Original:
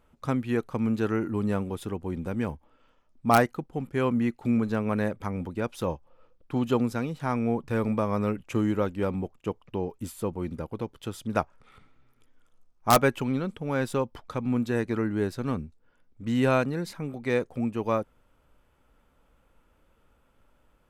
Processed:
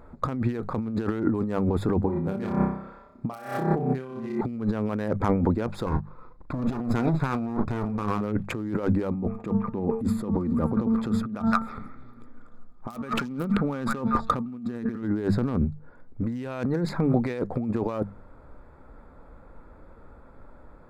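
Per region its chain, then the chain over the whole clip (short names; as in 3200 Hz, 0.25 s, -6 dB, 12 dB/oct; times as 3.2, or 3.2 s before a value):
2.02–4.41 HPF 61 Hz + doubler 36 ms -2 dB + flutter echo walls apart 5.3 m, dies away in 0.6 s
5.86–8.21 minimum comb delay 0.8 ms + doubler 38 ms -11 dB
9.11–15.03 de-hum 224.4 Hz, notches 8 + small resonant body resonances 220/1200 Hz, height 12 dB, ringing for 70 ms + delay with a stepping band-pass 0.162 s, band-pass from 1700 Hz, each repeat 1.4 oct, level -8 dB
whole clip: Wiener smoothing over 15 samples; notches 50/100/150/200 Hz; negative-ratio compressor -36 dBFS, ratio -1; gain +8 dB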